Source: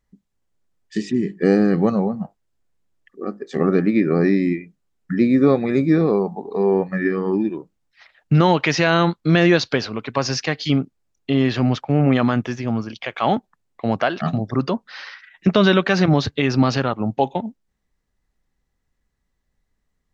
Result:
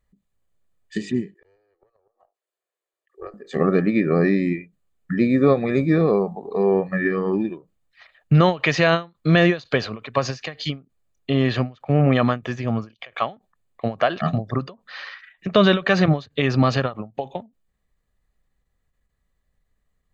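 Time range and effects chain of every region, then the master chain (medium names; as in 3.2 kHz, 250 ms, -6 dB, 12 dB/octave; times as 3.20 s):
1.34–3.34 s: steep high-pass 340 Hz 72 dB/octave + valve stage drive 13 dB, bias 0.75 + inverted gate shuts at -20 dBFS, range -40 dB
whole clip: peaking EQ 5.5 kHz -10.5 dB 0.28 oct; comb 1.7 ms, depth 33%; endings held to a fixed fall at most 240 dB/s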